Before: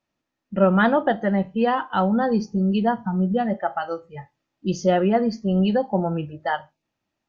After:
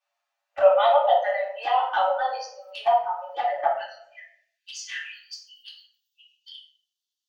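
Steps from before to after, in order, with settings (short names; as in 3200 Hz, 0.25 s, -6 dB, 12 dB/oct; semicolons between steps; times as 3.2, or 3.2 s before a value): steep high-pass 560 Hz 96 dB/oct, from 3.69 s 1600 Hz, from 5.11 s 3000 Hz; envelope flanger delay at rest 10.1 ms, full sweep at -22 dBFS; reverb RT60 0.70 s, pre-delay 3 ms, DRR -4.5 dB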